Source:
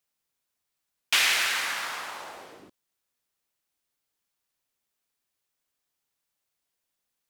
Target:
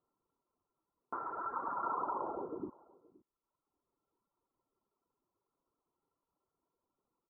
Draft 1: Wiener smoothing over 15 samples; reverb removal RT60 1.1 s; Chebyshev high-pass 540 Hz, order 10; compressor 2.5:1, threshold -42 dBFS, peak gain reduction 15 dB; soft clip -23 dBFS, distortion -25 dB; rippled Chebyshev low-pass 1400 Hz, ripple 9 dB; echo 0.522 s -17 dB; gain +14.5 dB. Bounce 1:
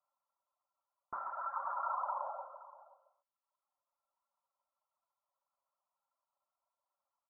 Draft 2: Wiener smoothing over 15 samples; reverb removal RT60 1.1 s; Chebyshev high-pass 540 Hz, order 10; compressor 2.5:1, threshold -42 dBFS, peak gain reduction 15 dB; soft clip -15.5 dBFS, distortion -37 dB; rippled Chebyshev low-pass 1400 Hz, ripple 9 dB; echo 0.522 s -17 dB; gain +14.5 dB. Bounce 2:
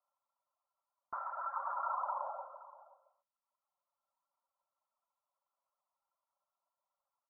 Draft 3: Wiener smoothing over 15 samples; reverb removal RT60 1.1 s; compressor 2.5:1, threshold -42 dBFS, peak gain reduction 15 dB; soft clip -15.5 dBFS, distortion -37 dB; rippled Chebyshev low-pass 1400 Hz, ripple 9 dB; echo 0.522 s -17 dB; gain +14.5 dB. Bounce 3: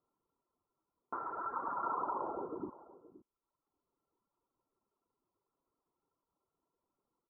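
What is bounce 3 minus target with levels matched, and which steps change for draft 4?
echo-to-direct +6 dB
change: echo 0.522 s -23 dB

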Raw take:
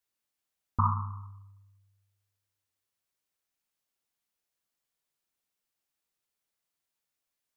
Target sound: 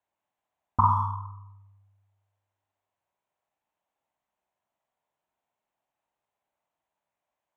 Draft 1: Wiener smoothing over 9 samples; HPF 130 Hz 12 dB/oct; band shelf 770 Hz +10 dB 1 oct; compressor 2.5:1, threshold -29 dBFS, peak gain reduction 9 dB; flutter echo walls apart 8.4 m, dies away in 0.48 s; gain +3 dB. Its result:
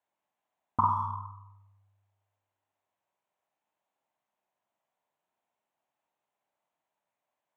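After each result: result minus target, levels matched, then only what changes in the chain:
125 Hz band -4.5 dB; compressor: peak gain reduction +4.5 dB
change: HPF 43 Hz 12 dB/oct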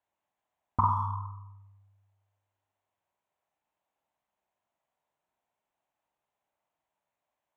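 compressor: peak gain reduction +4.5 dB
change: compressor 2.5:1, threshold -21.5 dBFS, peak gain reduction 4.5 dB

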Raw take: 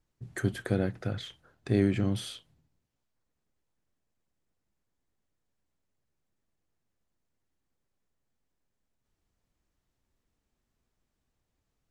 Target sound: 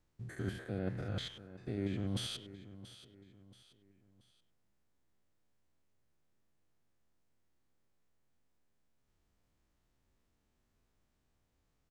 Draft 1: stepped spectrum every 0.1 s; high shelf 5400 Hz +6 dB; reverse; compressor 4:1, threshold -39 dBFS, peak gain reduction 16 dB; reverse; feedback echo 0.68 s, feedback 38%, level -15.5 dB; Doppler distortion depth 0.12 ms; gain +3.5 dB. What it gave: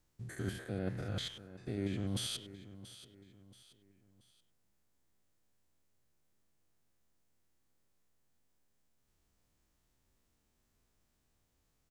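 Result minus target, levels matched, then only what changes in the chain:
8000 Hz band +5.0 dB
change: high shelf 5400 Hz -4 dB

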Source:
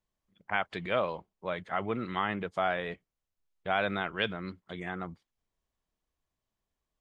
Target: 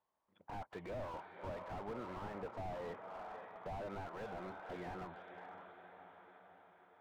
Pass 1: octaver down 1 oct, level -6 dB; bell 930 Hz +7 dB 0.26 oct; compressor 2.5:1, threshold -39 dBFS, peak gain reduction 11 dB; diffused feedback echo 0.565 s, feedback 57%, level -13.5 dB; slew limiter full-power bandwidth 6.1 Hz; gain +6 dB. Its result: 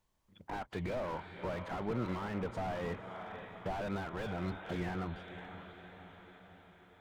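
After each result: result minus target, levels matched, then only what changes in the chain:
slew limiter: distortion -6 dB; 1000 Hz band -3.0 dB
change: slew limiter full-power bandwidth 2.5 Hz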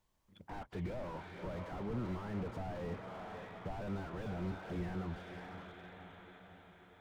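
1000 Hz band -5.0 dB
add after compressor: band-pass 840 Hz, Q 1.1

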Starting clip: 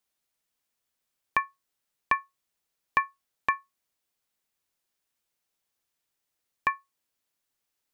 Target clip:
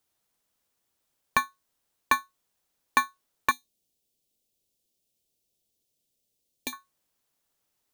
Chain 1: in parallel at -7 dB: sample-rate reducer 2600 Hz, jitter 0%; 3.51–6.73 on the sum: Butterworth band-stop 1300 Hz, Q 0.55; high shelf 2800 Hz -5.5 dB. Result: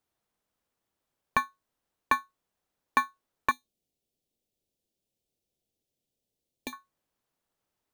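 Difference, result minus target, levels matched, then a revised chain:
4000 Hz band -5.0 dB
in parallel at -7 dB: sample-rate reducer 2600 Hz, jitter 0%; 3.51–6.73 on the sum: Butterworth band-stop 1300 Hz, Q 0.55; high shelf 2800 Hz +4.5 dB

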